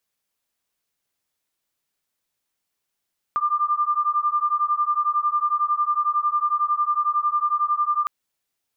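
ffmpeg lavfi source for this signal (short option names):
-f lavfi -i "aevalsrc='0.0794*(sin(2*PI*1190*t)+sin(2*PI*1201*t))':d=4.71:s=44100"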